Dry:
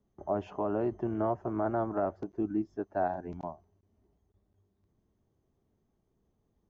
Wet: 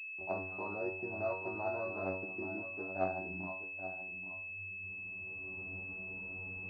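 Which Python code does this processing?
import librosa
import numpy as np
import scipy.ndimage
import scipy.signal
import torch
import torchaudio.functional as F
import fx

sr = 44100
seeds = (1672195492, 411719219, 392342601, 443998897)

y = fx.recorder_agc(x, sr, target_db=-22.5, rise_db_per_s=13.0, max_gain_db=30)
y = scipy.signal.sosfilt(scipy.signal.butter(2, 55.0, 'highpass', fs=sr, output='sos'), y)
y = fx.peak_eq(y, sr, hz=130.0, db=-3.5, octaves=2.2)
y = fx.comb_fb(y, sr, f0_hz=94.0, decay_s=0.45, harmonics='all', damping=0.0, mix_pct=100)
y = y + 10.0 ** (-11.0 / 20.0) * np.pad(y, (int(829 * sr / 1000.0), 0))[:len(y)]
y = fx.pwm(y, sr, carrier_hz=2600.0)
y = y * 10.0 ** (6.0 / 20.0)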